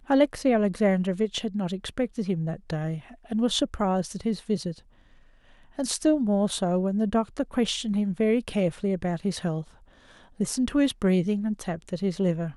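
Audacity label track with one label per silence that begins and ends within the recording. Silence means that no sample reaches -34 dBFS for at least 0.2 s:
2.990000	3.310000	silence
4.720000	5.790000	silence
9.620000	10.400000	silence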